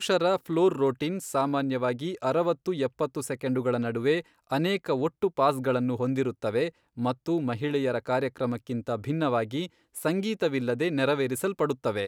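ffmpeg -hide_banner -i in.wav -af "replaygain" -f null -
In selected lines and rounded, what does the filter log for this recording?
track_gain = +8.0 dB
track_peak = 0.207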